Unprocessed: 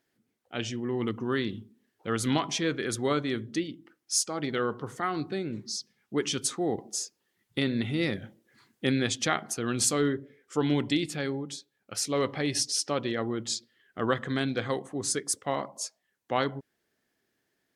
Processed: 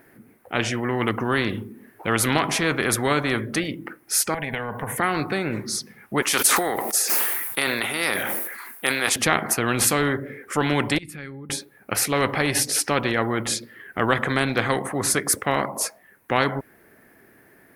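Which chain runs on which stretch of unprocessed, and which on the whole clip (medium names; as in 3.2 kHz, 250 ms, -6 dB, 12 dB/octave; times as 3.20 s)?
4.34–4.98 s: treble shelf 6 kHz +6.5 dB + compression 4:1, threshold -34 dBFS + static phaser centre 1.3 kHz, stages 6
6.22–9.16 s: high-pass 800 Hz + treble shelf 7.5 kHz +11.5 dB + decay stretcher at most 56 dB/s
10.98–11.50 s: amplifier tone stack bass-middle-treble 6-0-2 + compression 4:1, threshold -51 dBFS
whole clip: high-order bell 4.8 kHz -15.5 dB; spectrum-flattening compressor 2:1; trim +8.5 dB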